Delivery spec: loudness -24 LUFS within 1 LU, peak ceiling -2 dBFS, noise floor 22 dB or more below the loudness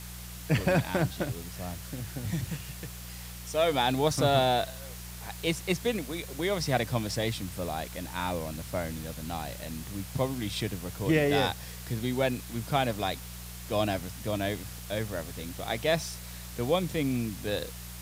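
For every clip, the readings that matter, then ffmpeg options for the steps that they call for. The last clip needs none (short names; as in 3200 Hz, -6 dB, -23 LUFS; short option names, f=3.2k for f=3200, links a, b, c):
hum 60 Hz; harmonics up to 180 Hz; hum level -41 dBFS; noise floor -42 dBFS; noise floor target -53 dBFS; loudness -31.0 LUFS; peak -10.0 dBFS; loudness target -24.0 LUFS
-> -af "bandreject=f=60:t=h:w=4,bandreject=f=120:t=h:w=4,bandreject=f=180:t=h:w=4"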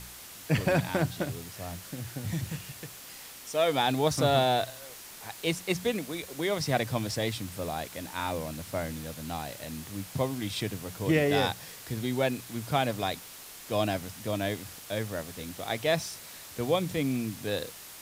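hum none; noise floor -46 dBFS; noise floor target -53 dBFS
-> -af "afftdn=nr=7:nf=-46"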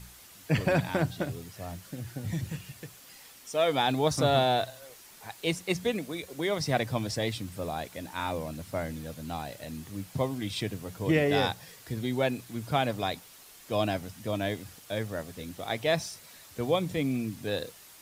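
noise floor -52 dBFS; noise floor target -53 dBFS
-> -af "afftdn=nr=6:nf=-52"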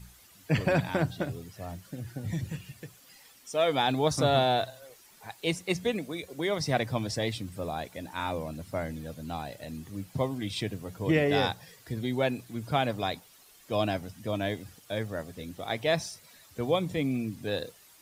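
noise floor -57 dBFS; loudness -31.0 LUFS; peak -10.5 dBFS; loudness target -24.0 LUFS
-> -af "volume=7dB"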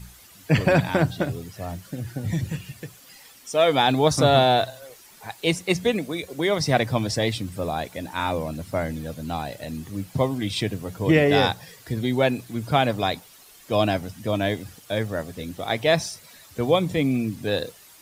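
loudness -24.0 LUFS; peak -3.5 dBFS; noise floor -50 dBFS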